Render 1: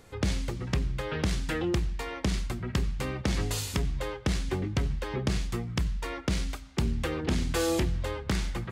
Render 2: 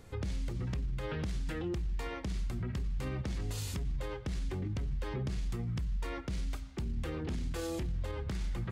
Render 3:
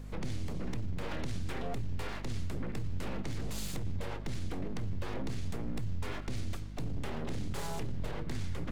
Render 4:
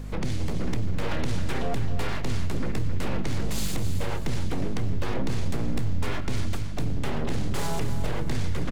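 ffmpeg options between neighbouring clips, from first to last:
-af "lowshelf=f=230:g=8,alimiter=level_in=1.12:limit=0.0631:level=0:latency=1:release=51,volume=0.891,volume=0.631"
-af "aeval=exprs='abs(val(0))':c=same,aeval=exprs='val(0)+0.00631*(sin(2*PI*50*n/s)+sin(2*PI*2*50*n/s)/2+sin(2*PI*3*50*n/s)/3+sin(2*PI*4*50*n/s)/4+sin(2*PI*5*50*n/s)/5)':c=same,volume=1.19"
-af "aecho=1:1:266|532|798|1064:0.335|0.137|0.0563|0.0231,volume=2.66"

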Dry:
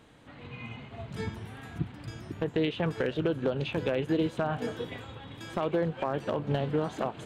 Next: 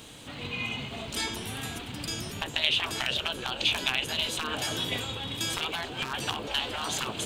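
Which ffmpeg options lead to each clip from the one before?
-af "afftfilt=real='re*lt(hypot(re,im),0.0708)':imag='im*lt(hypot(re,im),0.0708)':win_size=1024:overlap=0.75,aexciter=amount=2.3:drive=8.5:freq=2600,volume=2.24"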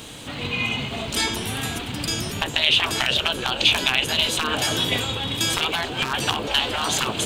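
-af "alimiter=level_in=3.35:limit=0.891:release=50:level=0:latency=1,volume=0.794"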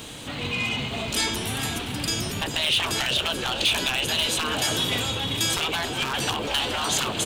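-filter_complex "[0:a]acrossover=split=4500[s0][s1];[s0]asoftclip=type=tanh:threshold=0.0891[s2];[s2][s1]amix=inputs=2:normalize=0,aecho=1:1:429:0.211"

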